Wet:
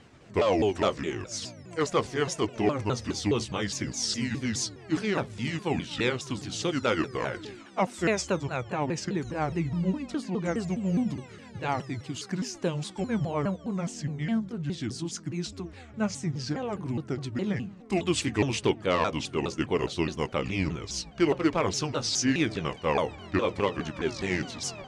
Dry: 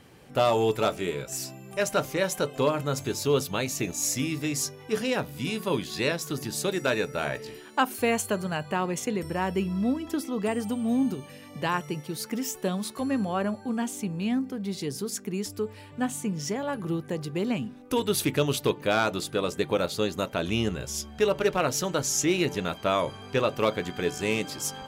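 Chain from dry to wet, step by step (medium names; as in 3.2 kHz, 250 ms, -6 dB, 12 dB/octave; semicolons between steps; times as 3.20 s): sawtooth pitch modulation -6.5 st, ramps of 207 ms; low-pass 7.8 kHz 24 dB/octave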